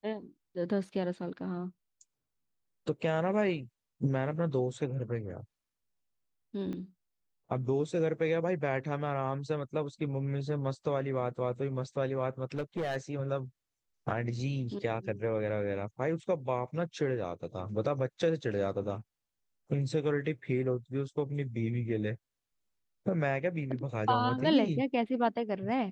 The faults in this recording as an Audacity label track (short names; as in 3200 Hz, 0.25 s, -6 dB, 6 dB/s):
6.730000	6.730000	pop -29 dBFS
12.540000	12.970000	clipped -29 dBFS